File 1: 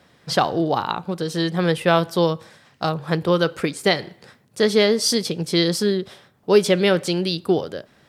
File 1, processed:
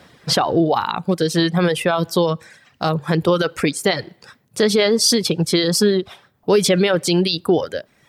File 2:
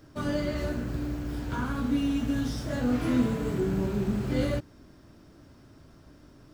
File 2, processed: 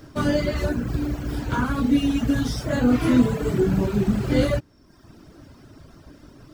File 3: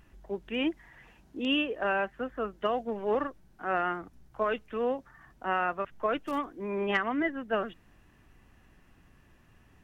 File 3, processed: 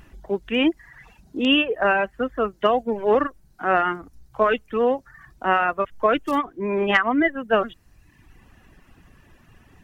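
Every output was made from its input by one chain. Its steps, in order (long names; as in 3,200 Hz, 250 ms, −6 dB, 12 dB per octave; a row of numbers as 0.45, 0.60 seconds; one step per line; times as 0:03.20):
brickwall limiter −14 dBFS
reverb reduction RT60 0.93 s
normalise the peak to −6 dBFS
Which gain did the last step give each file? +8.0, +9.0, +10.5 decibels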